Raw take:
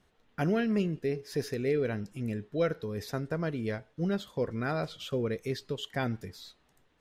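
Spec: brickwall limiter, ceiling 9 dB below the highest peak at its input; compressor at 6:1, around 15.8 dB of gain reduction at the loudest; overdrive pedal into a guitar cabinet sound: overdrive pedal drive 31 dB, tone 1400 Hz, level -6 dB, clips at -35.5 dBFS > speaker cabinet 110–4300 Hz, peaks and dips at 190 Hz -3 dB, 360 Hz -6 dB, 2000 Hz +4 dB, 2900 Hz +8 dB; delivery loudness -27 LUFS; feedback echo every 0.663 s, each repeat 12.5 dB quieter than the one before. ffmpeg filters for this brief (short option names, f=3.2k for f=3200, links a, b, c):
-filter_complex "[0:a]acompressor=threshold=-41dB:ratio=6,alimiter=level_in=14dB:limit=-24dB:level=0:latency=1,volume=-14dB,aecho=1:1:663|1326|1989:0.237|0.0569|0.0137,asplit=2[a][b];[b]highpass=f=720:p=1,volume=31dB,asoftclip=type=tanh:threshold=-35.5dB[c];[a][c]amix=inputs=2:normalize=0,lowpass=f=1.4k:p=1,volume=-6dB,highpass=110,equalizer=f=190:t=q:w=4:g=-3,equalizer=f=360:t=q:w=4:g=-6,equalizer=f=2k:t=q:w=4:g=4,equalizer=f=2.9k:t=q:w=4:g=8,lowpass=f=4.3k:w=0.5412,lowpass=f=4.3k:w=1.3066,volume=17.5dB"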